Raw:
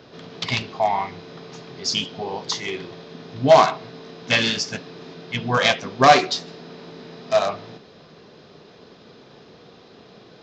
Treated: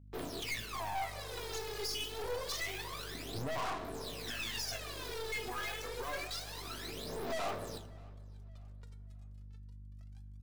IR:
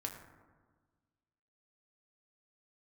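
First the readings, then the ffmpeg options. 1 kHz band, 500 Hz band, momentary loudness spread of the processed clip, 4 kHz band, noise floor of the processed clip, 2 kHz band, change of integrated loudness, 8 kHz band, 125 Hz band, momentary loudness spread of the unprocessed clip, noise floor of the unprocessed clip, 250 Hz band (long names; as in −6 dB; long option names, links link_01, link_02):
−20.5 dB, −19.5 dB, 16 LU, −15.5 dB, −50 dBFS, −16.0 dB, −19.0 dB, can't be measured, −14.5 dB, 25 LU, −48 dBFS, −18.5 dB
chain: -filter_complex "[0:a]highpass=frequency=430:poles=1,acrossover=split=2600[link_01][link_02];[link_02]acompressor=threshold=-30dB:ratio=4:attack=1:release=60[link_03];[link_01][link_03]amix=inputs=2:normalize=0,agate=range=-33dB:threshold=-40dB:ratio=3:detection=peak,acompressor=threshold=-40dB:ratio=2.5,alimiter=level_in=7.5dB:limit=-24dB:level=0:latency=1:release=14,volume=-7.5dB,flanger=delay=1.7:depth=1.4:regen=25:speed=1.7:shape=sinusoidal,acrusher=bits=8:mix=0:aa=0.5,aphaser=in_gain=1:out_gain=1:delay=2.4:decay=0.79:speed=0.27:type=sinusoidal,aeval=exprs='val(0)+0.00141*(sin(2*PI*50*n/s)+sin(2*PI*2*50*n/s)/2+sin(2*PI*3*50*n/s)/3+sin(2*PI*4*50*n/s)/4+sin(2*PI*5*50*n/s)/5)':channel_layout=same,aeval=exprs='(tanh(112*val(0)+0.6)-tanh(0.6))/112':channel_layout=same,asplit=2[link_04][link_05];[link_05]adelay=583,lowpass=frequency=4400:poles=1,volume=-24dB,asplit=2[link_06][link_07];[link_07]adelay=583,lowpass=frequency=4400:poles=1,volume=0.41,asplit=2[link_08][link_09];[link_09]adelay=583,lowpass=frequency=4400:poles=1,volume=0.41[link_10];[link_04][link_06][link_08][link_10]amix=inputs=4:normalize=0,asplit=2[link_11][link_12];[1:a]atrim=start_sample=2205,highshelf=frequency=5100:gain=10.5[link_13];[link_12][link_13]afir=irnorm=-1:irlink=0,volume=-2dB[link_14];[link_11][link_14]amix=inputs=2:normalize=0,volume=1.5dB"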